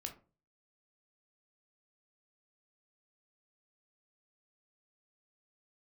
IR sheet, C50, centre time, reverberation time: 12.0 dB, 12 ms, 0.35 s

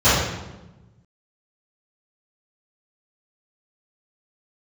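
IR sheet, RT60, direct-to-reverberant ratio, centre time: 1.1 s, -20.5 dB, 79 ms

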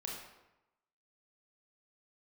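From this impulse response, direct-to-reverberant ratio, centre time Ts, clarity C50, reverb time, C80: -2.5 dB, 56 ms, 2.0 dB, 0.95 s, 4.5 dB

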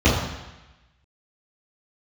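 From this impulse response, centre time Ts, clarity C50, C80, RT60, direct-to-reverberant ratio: 59 ms, 2.0 dB, 5.0 dB, 1.0 s, -13.5 dB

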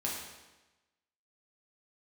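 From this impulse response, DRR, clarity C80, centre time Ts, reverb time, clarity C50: -4.5 dB, 4.0 dB, 61 ms, 1.1 s, 2.0 dB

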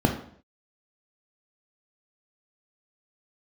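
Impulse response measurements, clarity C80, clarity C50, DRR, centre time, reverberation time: 12.0 dB, 7.5 dB, 3.0 dB, 23 ms, 0.55 s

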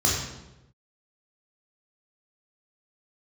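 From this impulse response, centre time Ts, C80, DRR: 58 ms, 4.5 dB, -5.0 dB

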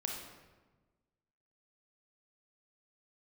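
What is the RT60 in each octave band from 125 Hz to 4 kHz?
1.6 s, 1.6 s, 1.4 s, 1.2 s, 1.0 s, 0.85 s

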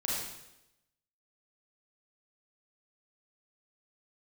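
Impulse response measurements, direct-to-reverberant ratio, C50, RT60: -5.5 dB, -1.5 dB, 0.90 s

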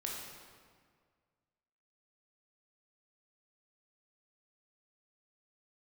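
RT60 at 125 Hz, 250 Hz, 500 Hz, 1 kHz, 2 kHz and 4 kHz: 2.1 s, 1.9 s, 1.9 s, 1.8 s, 1.6 s, 1.3 s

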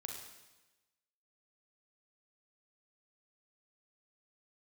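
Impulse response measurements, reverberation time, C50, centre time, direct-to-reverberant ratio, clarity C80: 1.1 s, 3.0 dB, 47 ms, 1.0 dB, 5.5 dB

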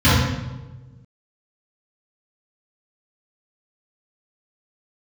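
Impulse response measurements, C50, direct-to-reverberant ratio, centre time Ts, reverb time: -2.0 dB, -14.0 dB, 84 ms, 1.2 s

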